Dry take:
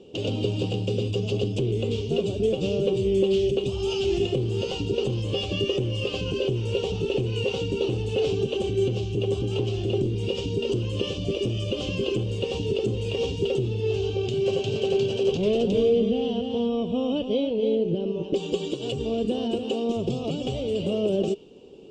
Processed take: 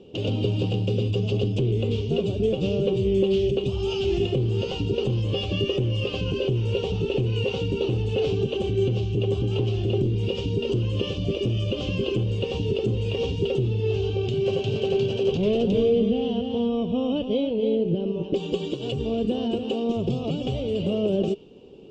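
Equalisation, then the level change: distance through air 64 m; tone controls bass +8 dB, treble -3 dB; bass shelf 350 Hz -6 dB; +1.5 dB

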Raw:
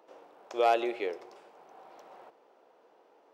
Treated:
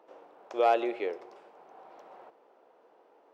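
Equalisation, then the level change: bass shelf 150 Hz -4.5 dB; treble shelf 3.5 kHz -10 dB; +1.5 dB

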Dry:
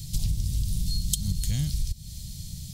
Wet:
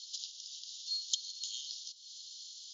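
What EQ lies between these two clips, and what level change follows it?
steep high-pass 2.9 kHz 96 dB/octave; brick-wall FIR low-pass 7.2 kHz; distance through air 60 m; +2.0 dB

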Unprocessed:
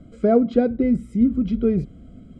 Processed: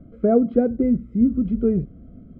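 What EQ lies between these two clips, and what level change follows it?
low-pass 1.2 kHz 12 dB/octave; peaking EQ 890 Hz -11 dB 0.26 oct; 0.0 dB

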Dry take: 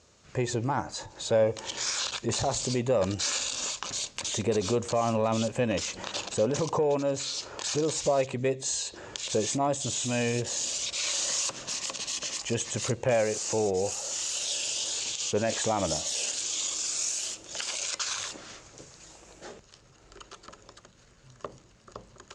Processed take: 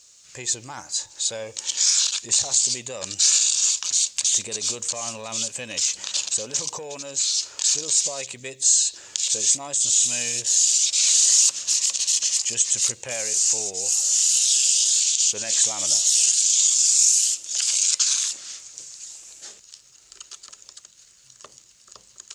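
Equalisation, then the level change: pre-emphasis filter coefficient 0.9; treble shelf 2.4 kHz +9 dB; +7.0 dB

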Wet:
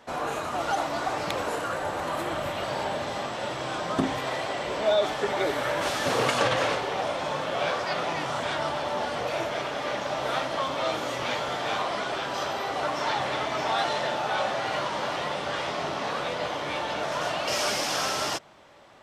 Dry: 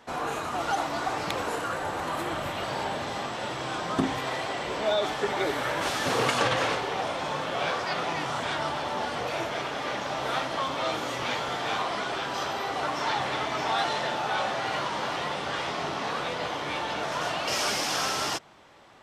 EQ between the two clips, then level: peaking EQ 590 Hz +5.5 dB 0.26 oct; 0.0 dB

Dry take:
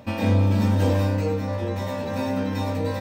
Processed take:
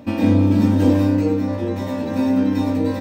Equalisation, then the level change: peaking EQ 290 Hz +13.5 dB 0.65 oct; 0.0 dB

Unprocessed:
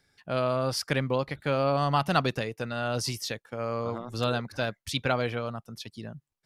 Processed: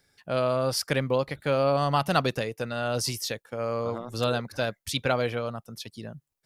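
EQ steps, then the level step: peaking EQ 520 Hz +3.5 dB 0.64 oct; treble shelf 8 kHz +8.5 dB; 0.0 dB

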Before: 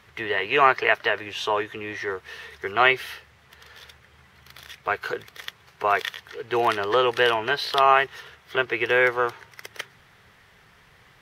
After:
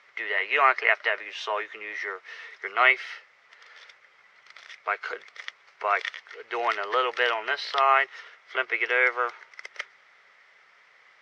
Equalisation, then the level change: cabinet simulation 490–6900 Hz, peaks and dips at 580 Hz +6 dB, 1.3 kHz +6 dB, 2.1 kHz +10 dB, 5.2 kHz +4 dB; -6.5 dB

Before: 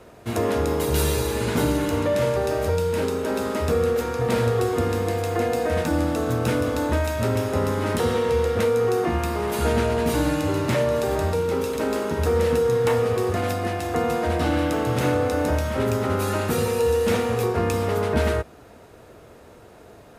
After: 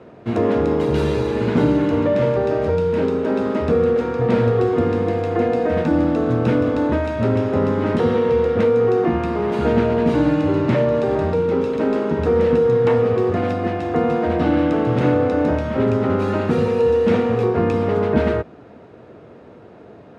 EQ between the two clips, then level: band-pass 180–3200 Hz; bass shelf 230 Hz +8 dB; bass shelf 500 Hz +6 dB; 0.0 dB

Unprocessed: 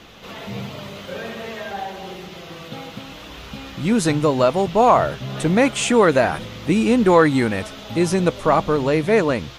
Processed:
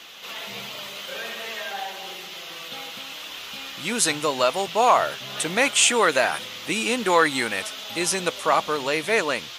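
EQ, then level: high-pass 1.3 kHz 6 dB/octave; peaking EQ 3 kHz +3 dB 0.59 oct; treble shelf 6.1 kHz +7.5 dB; +2.0 dB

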